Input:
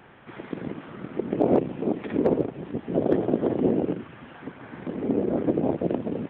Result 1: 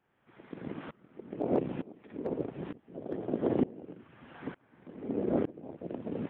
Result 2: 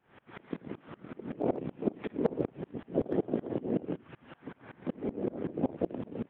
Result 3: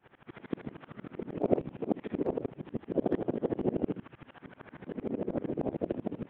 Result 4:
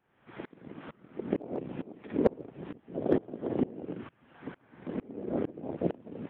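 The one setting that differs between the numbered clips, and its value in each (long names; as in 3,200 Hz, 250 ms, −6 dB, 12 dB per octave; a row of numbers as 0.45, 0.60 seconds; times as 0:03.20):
tremolo with a ramp in dB, speed: 1.1, 5.3, 13, 2.2 Hertz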